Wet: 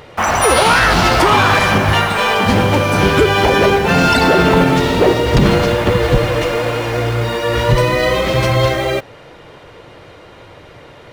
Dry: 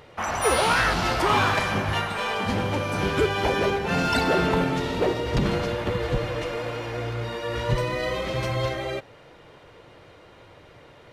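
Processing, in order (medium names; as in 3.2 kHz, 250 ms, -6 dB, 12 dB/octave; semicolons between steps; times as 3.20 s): in parallel at -11 dB: bit crusher 6-bit; on the sum: loudness maximiser +11.5 dB; trim -1 dB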